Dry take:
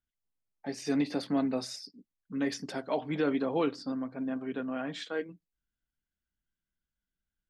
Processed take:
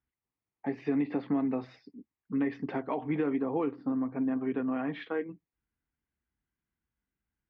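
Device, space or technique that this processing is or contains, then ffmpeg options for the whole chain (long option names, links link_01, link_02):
bass amplifier: -filter_complex "[0:a]acompressor=threshold=-33dB:ratio=4,highpass=65,equalizer=frequency=180:width_type=q:width=4:gain=-6,equalizer=frequency=590:width_type=q:width=4:gain=-9,equalizer=frequency=1500:width_type=q:width=4:gain=-8,lowpass=frequency=2200:width=0.5412,lowpass=frequency=2200:width=1.3066,asettb=1/sr,asplit=3[link_01][link_02][link_03];[link_01]atrim=end=3.364[link_04];[link_02]atrim=start=3.36:end=4.14,asetpts=PTS-STARTPTS,afade=type=in:duration=0.004:curve=qsin,afade=type=out:start_time=0.776:duration=0.004:curve=qsin,aemphasis=mode=reproduction:type=75kf[link_05];[link_03]atrim=start=4.136[link_06];[link_04][link_05]acrossfade=duration=0.004:curve1=hsin:curve2=qsin[link_07];[link_07][link_06]acrossfade=duration=0.004:curve1=qsin:curve2=hsin,volume=7.5dB"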